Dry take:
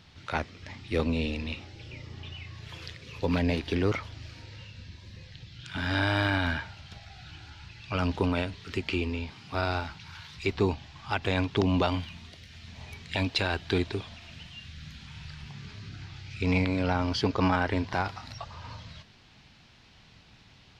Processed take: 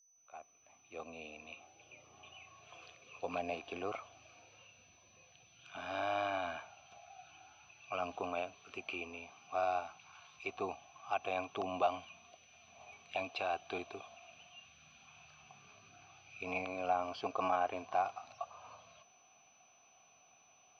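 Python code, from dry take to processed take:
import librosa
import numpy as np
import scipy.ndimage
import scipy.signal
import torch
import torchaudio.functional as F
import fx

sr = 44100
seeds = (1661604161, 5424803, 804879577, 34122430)

y = fx.fade_in_head(x, sr, length_s=2.32)
y = fx.vowel_filter(y, sr, vowel='a')
y = y + 10.0 ** (-70.0 / 20.0) * np.sin(2.0 * np.pi * 6000.0 * np.arange(len(y)) / sr)
y = y * 10.0 ** (3.5 / 20.0)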